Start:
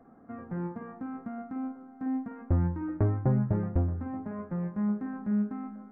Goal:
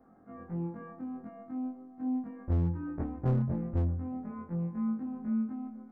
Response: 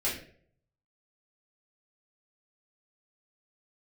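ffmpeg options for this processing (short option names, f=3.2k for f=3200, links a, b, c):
-af "afftfilt=real='re':imag='-im':win_size=2048:overlap=0.75,volume=23.5dB,asoftclip=hard,volume=-23.5dB"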